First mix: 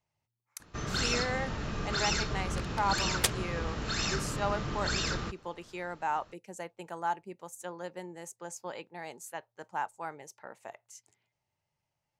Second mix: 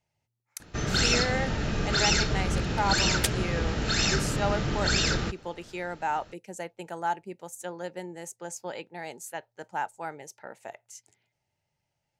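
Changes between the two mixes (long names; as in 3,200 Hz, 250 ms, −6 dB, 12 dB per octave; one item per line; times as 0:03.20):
speech +4.5 dB
first sound +7.0 dB
master: add parametric band 1,100 Hz −10.5 dB 0.27 octaves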